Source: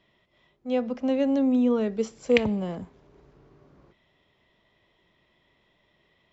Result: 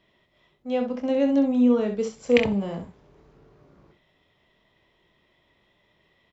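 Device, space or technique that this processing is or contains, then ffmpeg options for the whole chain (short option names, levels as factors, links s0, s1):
slapback doubling: -filter_complex "[0:a]asplit=3[s0][s1][s2];[s1]adelay=25,volume=0.447[s3];[s2]adelay=65,volume=0.422[s4];[s0][s3][s4]amix=inputs=3:normalize=0"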